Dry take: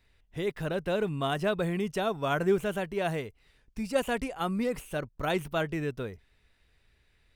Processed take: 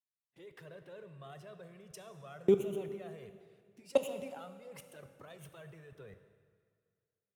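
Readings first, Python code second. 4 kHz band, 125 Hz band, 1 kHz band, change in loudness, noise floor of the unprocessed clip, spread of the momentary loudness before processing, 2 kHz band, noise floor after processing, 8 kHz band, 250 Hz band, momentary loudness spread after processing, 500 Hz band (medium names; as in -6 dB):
-15.0 dB, -14.0 dB, -18.0 dB, -4.0 dB, -68 dBFS, 9 LU, -19.5 dB, under -85 dBFS, -9.0 dB, -10.5 dB, 23 LU, -6.5 dB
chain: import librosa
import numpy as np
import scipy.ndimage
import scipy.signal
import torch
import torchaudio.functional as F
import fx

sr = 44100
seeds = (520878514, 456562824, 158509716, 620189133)

y = scipy.signal.sosfilt(scipy.signal.butter(4, 110.0, 'highpass', fs=sr, output='sos'), x)
y = fx.level_steps(y, sr, step_db=23)
y = fx.env_flanger(y, sr, rest_ms=7.5, full_db=-36.0)
y = fx.rev_plate(y, sr, seeds[0], rt60_s=3.0, hf_ratio=0.85, predelay_ms=0, drr_db=8.0)
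y = fx.band_widen(y, sr, depth_pct=40)
y = y * librosa.db_to_amplitude(-1.5)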